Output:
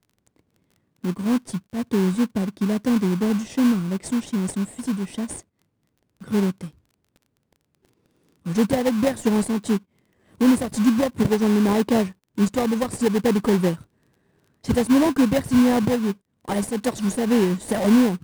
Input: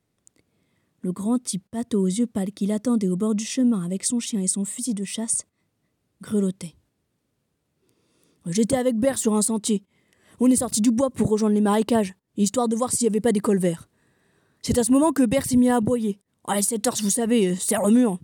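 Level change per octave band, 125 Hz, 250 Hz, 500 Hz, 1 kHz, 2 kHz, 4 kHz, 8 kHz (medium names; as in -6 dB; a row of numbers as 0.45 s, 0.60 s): +2.0 dB, +1.5 dB, 0.0 dB, 0.0 dB, +4.5 dB, -0.5 dB, -10.0 dB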